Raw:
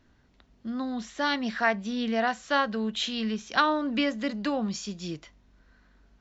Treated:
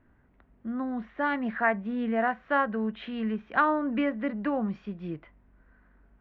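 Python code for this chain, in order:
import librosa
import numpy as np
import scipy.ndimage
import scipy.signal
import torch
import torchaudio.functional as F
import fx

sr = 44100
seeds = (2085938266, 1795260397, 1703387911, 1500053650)

y = scipy.signal.sosfilt(scipy.signal.butter(4, 2100.0, 'lowpass', fs=sr, output='sos'), x)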